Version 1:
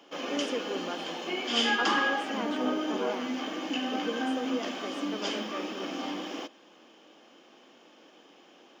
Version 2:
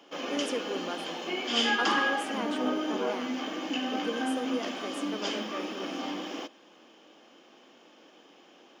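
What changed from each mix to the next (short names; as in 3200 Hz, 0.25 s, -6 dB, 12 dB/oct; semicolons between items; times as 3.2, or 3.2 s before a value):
speech: remove air absorption 100 m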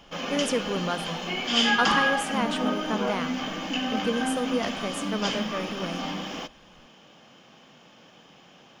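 background -5.0 dB; master: remove ladder high-pass 270 Hz, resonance 50%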